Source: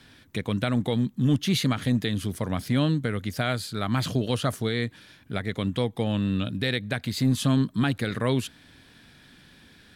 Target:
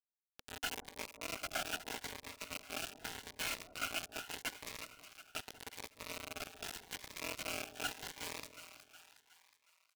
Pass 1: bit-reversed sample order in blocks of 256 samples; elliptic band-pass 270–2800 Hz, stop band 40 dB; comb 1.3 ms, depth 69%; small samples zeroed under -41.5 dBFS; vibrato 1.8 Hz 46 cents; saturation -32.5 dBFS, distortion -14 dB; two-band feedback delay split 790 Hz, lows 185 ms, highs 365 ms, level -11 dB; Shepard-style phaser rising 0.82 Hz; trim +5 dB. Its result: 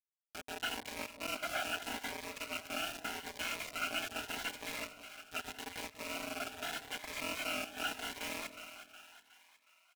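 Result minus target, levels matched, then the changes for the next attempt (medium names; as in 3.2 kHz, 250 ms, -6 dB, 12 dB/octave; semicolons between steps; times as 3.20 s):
small samples zeroed: distortion -8 dB
change: small samples zeroed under -34 dBFS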